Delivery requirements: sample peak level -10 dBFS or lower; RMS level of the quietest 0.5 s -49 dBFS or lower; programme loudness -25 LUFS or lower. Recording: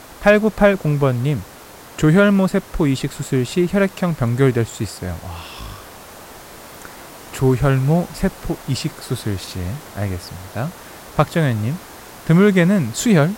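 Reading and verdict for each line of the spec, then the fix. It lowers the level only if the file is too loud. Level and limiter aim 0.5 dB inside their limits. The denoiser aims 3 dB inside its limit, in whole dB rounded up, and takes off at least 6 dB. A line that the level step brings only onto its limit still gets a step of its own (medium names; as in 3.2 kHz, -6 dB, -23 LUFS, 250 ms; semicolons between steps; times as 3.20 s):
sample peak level -2.0 dBFS: fail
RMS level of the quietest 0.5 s -40 dBFS: fail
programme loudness -18.5 LUFS: fail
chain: noise reduction 6 dB, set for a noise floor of -40 dBFS; trim -7 dB; peak limiter -10.5 dBFS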